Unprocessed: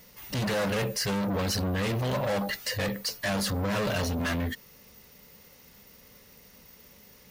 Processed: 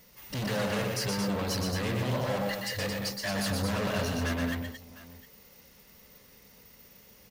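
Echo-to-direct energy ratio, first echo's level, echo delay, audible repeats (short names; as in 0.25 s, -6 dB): -1.5 dB, -4.0 dB, 0.121 s, 3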